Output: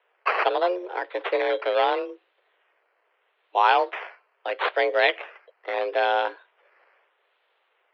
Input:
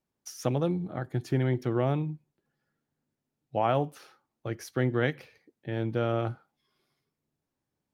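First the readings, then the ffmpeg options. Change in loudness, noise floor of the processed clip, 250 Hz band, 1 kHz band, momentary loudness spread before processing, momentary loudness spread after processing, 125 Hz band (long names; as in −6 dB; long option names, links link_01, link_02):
+6.0 dB, −70 dBFS, −9.5 dB, +12.0 dB, 15 LU, 16 LU, below −40 dB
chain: -af "crystalizer=i=6:c=0,acrusher=samples=10:mix=1:aa=0.000001:lfo=1:lforange=6:lforate=0.77,highpass=frequency=230:width_type=q:width=0.5412,highpass=frequency=230:width_type=q:width=1.307,lowpass=frequency=3400:width_type=q:width=0.5176,lowpass=frequency=3400:width_type=q:width=0.7071,lowpass=frequency=3400:width_type=q:width=1.932,afreqshift=180,volume=6dB"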